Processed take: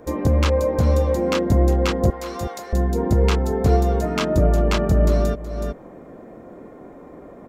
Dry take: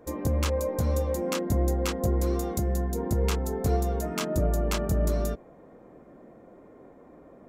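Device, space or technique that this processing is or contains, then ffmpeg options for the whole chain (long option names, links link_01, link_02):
ducked delay: -filter_complex "[0:a]acrossover=split=5300[link_01][link_02];[link_02]acompressor=threshold=-50dB:ratio=4:attack=1:release=60[link_03];[link_01][link_03]amix=inputs=2:normalize=0,asettb=1/sr,asplit=3[link_04][link_05][link_06];[link_04]atrim=end=2.104[link_07];[link_05]atrim=start=2.1:end=2.73,asetpts=PTS-STARTPTS,afade=type=in:duration=0.004:curve=qsin,afade=type=out:start_time=0.626:duration=0.004:curve=qsin,highpass=850[link_08];[link_06]atrim=start=2.726[link_09];[link_07][link_08]acrossfade=duration=0.004:curve1=hsin:curve2=qsin[link_10];[link_10][link_09]acrossfade=duration=0.004:curve1=qsin:curve2=hsin,asplit=3[link_11][link_12][link_13];[link_12]adelay=372,volume=-3.5dB[link_14];[link_13]apad=whole_len=346614[link_15];[link_14][link_15]sidechaincompress=threshold=-43dB:ratio=8:attack=7.5:release=270[link_16];[link_11][link_16]amix=inputs=2:normalize=0,volume=8.5dB"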